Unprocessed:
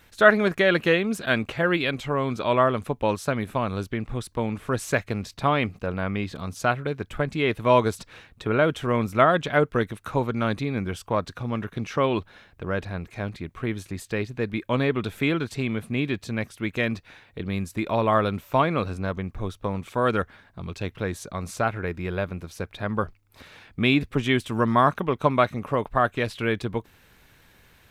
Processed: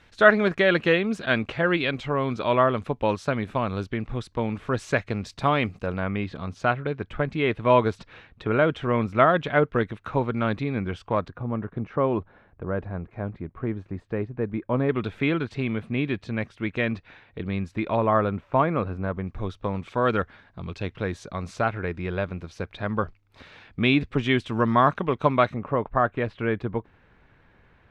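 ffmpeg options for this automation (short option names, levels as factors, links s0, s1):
-af "asetnsamples=n=441:p=0,asendcmd='5.26 lowpass f 8200;6 lowpass f 3300;11.28 lowpass f 1200;14.89 lowpass f 3200;17.97 lowpass f 1800;19.27 lowpass f 4600;25.54 lowpass f 1800',lowpass=4900"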